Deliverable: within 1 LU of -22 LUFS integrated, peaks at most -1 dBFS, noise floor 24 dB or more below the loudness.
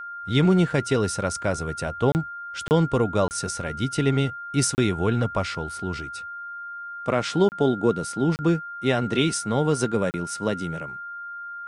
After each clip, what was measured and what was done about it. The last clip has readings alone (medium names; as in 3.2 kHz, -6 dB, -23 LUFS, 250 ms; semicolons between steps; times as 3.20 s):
dropouts 7; longest dropout 29 ms; steady tone 1.4 kHz; tone level -33 dBFS; loudness -24.5 LUFS; peak level -8.0 dBFS; loudness target -22.0 LUFS
-> interpolate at 2.12/2.68/3.28/4.75/7.49/8.36/10.11 s, 29 ms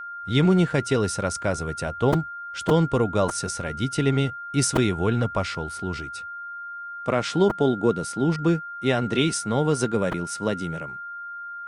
dropouts 0; steady tone 1.4 kHz; tone level -33 dBFS
-> band-stop 1.4 kHz, Q 30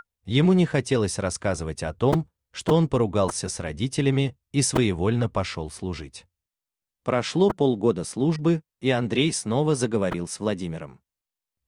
steady tone not found; loudness -24.5 LUFS; peak level -8.0 dBFS; loudness target -22.0 LUFS
-> trim +2.5 dB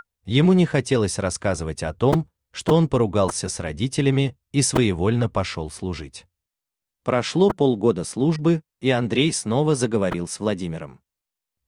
loudness -22.0 LUFS; peak level -5.5 dBFS; noise floor -86 dBFS